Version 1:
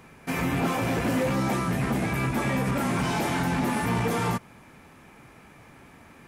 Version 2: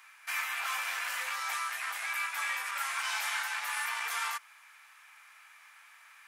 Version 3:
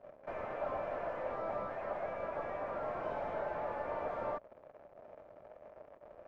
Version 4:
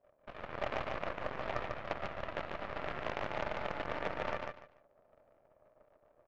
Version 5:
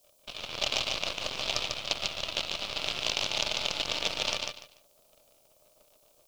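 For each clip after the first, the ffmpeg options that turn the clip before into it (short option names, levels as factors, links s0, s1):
-af "highpass=f=1200:w=0.5412,highpass=f=1200:w=1.3066"
-af "acrusher=bits=7:mix=0:aa=0.5,aeval=exprs='(tanh(141*val(0)+0.05)-tanh(0.05))/141':c=same,lowpass=f=600:t=q:w=7.3,volume=3.98"
-af "areverse,acompressor=mode=upward:threshold=0.00355:ratio=2.5,areverse,aeval=exprs='0.0473*(cos(1*acos(clip(val(0)/0.0473,-1,1)))-cos(1*PI/2))+0.0168*(cos(3*acos(clip(val(0)/0.0473,-1,1)))-cos(3*PI/2))+0.00133*(cos(5*acos(clip(val(0)/0.0473,-1,1)))-cos(5*PI/2))+0.00596*(cos(6*acos(clip(val(0)/0.0473,-1,1)))-cos(6*PI/2))+0.00299*(cos(8*acos(clip(val(0)/0.0473,-1,1)))-cos(8*PI/2))':c=same,aecho=1:1:146|292|438:0.631|0.139|0.0305,volume=2.24"
-af "aexciter=amount=10.3:drive=9.7:freq=2900"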